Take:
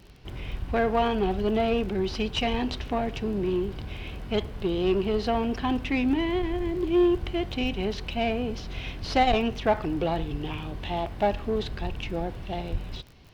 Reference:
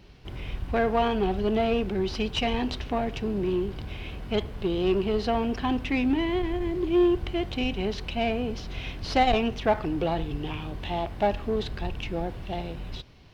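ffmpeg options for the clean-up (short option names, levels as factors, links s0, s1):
-filter_complex "[0:a]adeclick=t=4,asplit=3[s0][s1][s2];[s0]afade=t=out:st=12.71:d=0.02[s3];[s1]highpass=f=140:w=0.5412,highpass=f=140:w=1.3066,afade=t=in:st=12.71:d=0.02,afade=t=out:st=12.83:d=0.02[s4];[s2]afade=t=in:st=12.83:d=0.02[s5];[s3][s4][s5]amix=inputs=3:normalize=0"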